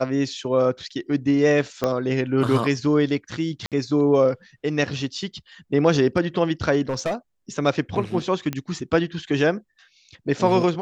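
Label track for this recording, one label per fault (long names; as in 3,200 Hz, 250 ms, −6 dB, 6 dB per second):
1.840000	1.840000	click −9 dBFS
3.660000	3.720000	drop-out 57 ms
6.890000	7.140000	clipping −20.5 dBFS
8.530000	8.530000	click −13 dBFS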